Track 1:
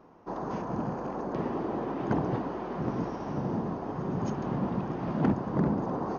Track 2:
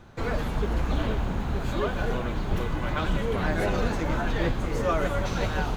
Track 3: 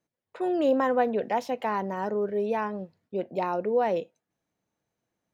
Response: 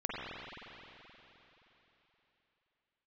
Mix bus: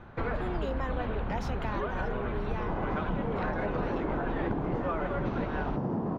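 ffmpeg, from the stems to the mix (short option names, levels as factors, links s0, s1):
-filter_complex "[0:a]tiltshelf=f=1500:g=6.5,highshelf=f=3000:g=-12,adelay=2400,volume=1.19[s0];[1:a]lowpass=1400,volume=1.06[s1];[2:a]volume=0.447[s2];[s0][s1][s2]amix=inputs=3:normalize=0,equalizer=f=3500:w=0.39:g=9.5,acompressor=threshold=0.0398:ratio=6"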